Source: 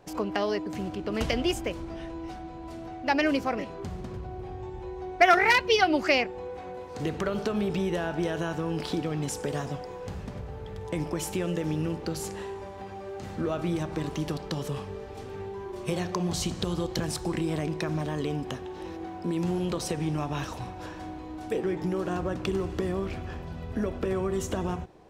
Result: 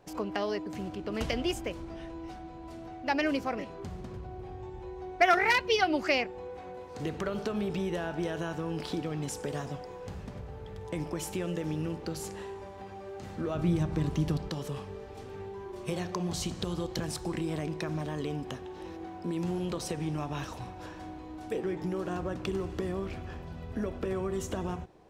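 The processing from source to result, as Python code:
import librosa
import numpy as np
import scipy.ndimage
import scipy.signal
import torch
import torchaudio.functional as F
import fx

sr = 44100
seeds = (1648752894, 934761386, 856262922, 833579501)

y = fx.bass_treble(x, sr, bass_db=10, treble_db=0, at=(13.55, 14.49))
y = y * librosa.db_to_amplitude(-4.0)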